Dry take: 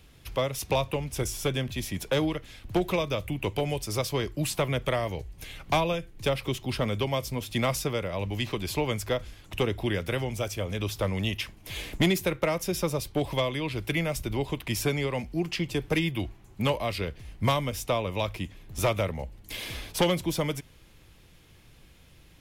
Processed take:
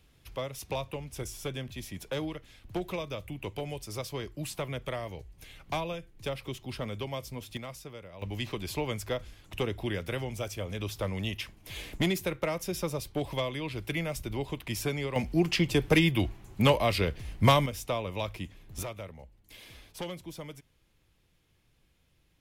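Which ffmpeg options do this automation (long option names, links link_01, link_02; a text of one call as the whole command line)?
ffmpeg -i in.wav -af "asetnsamples=nb_out_samples=441:pad=0,asendcmd='7.57 volume volume -15.5dB;8.22 volume volume -4.5dB;15.16 volume volume 3.5dB;17.66 volume volume -4.5dB;18.83 volume volume -14dB',volume=-8dB" out.wav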